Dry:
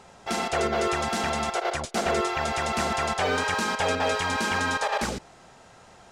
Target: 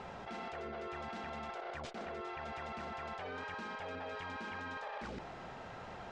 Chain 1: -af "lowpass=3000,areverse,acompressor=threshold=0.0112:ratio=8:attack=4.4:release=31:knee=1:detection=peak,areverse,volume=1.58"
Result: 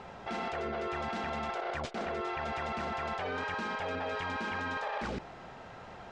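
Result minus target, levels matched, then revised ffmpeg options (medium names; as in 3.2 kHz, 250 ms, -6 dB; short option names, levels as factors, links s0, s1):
compression: peak gain reduction -8 dB
-af "lowpass=3000,areverse,acompressor=threshold=0.00398:ratio=8:attack=4.4:release=31:knee=1:detection=peak,areverse,volume=1.58"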